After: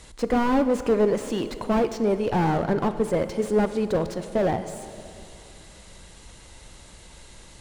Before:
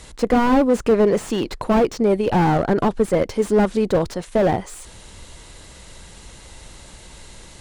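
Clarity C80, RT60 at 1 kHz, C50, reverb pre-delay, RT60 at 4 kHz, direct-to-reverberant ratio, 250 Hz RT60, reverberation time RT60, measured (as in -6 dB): 12.0 dB, 2.8 s, 11.5 dB, 14 ms, 2.6 s, 10.5 dB, 3.1 s, 2.9 s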